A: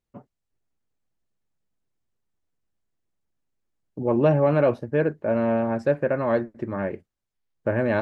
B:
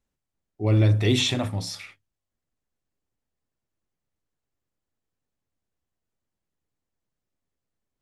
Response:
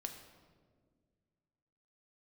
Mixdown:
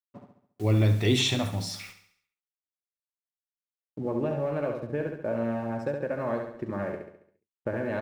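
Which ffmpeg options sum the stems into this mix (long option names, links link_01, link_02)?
-filter_complex "[0:a]acompressor=threshold=-24dB:ratio=6,aeval=exprs='sgn(val(0))*max(abs(val(0))-0.0015,0)':channel_layout=same,volume=-3dB,asplit=2[link_01][link_02];[link_02]volume=-5dB[link_03];[1:a]acrusher=bits=7:mix=0:aa=0.000001,volume=-2dB,asplit=2[link_04][link_05];[link_05]volume=-11dB[link_06];[link_03][link_06]amix=inputs=2:normalize=0,aecho=0:1:69|138|207|276|345|414|483:1|0.48|0.23|0.111|0.0531|0.0255|0.0122[link_07];[link_01][link_04][link_07]amix=inputs=3:normalize=0"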